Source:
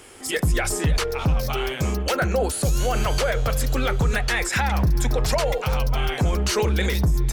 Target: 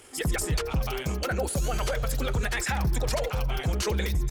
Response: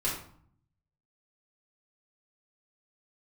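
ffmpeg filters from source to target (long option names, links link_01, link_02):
-filter_complex "[0:a]equalizer=frequency=14000:width=0.31:gain=2.5,atempo=1.7,asplit=2[link_01][link_02];[link_02]adelay=90,highpass=300,lowpass=3400,asoftclip=type=hard:threshold=-23dB,volume=-20dB[link_03];[link_01][link_03]amix=inputs=2:normalize=0,volume=-5.5dB"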